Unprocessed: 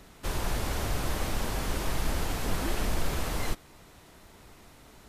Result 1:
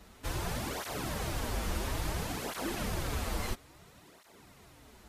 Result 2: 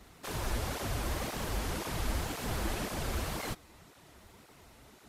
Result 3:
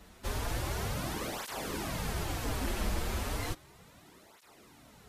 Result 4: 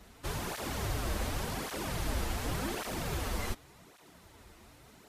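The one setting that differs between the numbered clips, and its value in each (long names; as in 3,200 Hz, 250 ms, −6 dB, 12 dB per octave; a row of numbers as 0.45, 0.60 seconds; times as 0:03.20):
through-zero flanger with one copy inverted, nulls at: 0.59, 1.9, 0.34, 0.88 Hertz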